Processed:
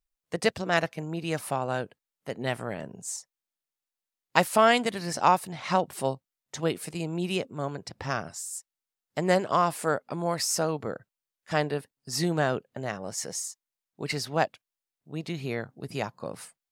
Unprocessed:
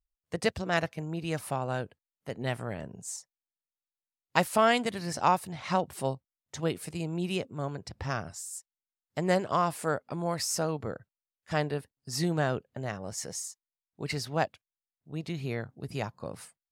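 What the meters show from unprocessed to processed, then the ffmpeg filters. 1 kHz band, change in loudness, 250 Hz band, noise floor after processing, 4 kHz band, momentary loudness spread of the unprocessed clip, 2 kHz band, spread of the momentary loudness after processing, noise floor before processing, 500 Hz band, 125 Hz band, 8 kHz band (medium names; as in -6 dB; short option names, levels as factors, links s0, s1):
+3.5 dB, +3.0 dB, +2.0 dB, under -85 dBFS, +3.5 dB, 13 LU, +3.5 dB, 14 LU, under -85 dBFS, +3.0 dB, 0.0 dB, +3.5 dB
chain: -af "equalizer=f=67:t=o:w=1.3:g=-14,volume=1.5"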